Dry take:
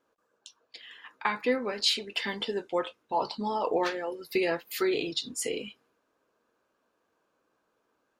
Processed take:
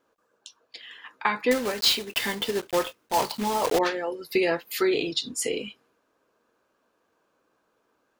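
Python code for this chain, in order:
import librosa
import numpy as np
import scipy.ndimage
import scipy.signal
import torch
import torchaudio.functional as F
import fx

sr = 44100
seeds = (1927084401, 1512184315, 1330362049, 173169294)

y = fx.block_float(x, sr, bits=3, at=(1.51, 3.79))
y = y * 10.0 ** (4.0 / 20.0)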